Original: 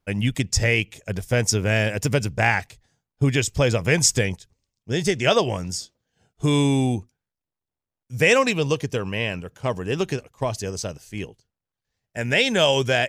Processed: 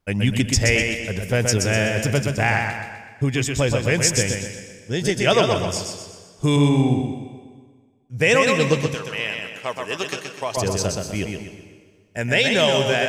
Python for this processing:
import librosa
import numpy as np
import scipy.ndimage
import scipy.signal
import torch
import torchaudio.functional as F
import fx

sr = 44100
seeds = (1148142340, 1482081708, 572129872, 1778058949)

y = fx.lowpass(x, sr, hz=1600.0, slope=6, at=(6.56, 8.21))
y = fx.echo_feedback(y, sr, ms=125, feedback_pct=42, wet_db=-4.5)
y = fx.rider(y, sr, range_db=5, speed_s=2.0)
y = fx.highpass(y, sr, hz=1200.0, slope=6, at=(8.94, 10.57))
y = fx.rev_plate(y, sr, seeds[0], rt60_s=1.7, hf_ratio=0.9, predelay_ms=115, drr_db=13.0)